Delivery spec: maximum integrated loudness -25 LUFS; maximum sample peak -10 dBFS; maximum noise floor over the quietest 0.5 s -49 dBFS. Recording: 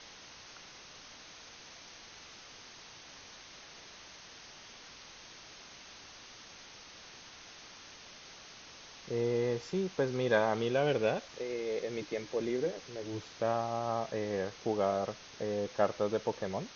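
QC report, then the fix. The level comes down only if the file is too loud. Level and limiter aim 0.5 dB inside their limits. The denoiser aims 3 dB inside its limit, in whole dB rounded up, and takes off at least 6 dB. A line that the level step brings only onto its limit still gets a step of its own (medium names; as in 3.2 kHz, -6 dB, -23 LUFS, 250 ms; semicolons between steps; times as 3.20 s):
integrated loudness -34.0 LUFS: pass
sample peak -15.0 dBFS: pass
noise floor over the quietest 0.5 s -52 dBFS: pass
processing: none needed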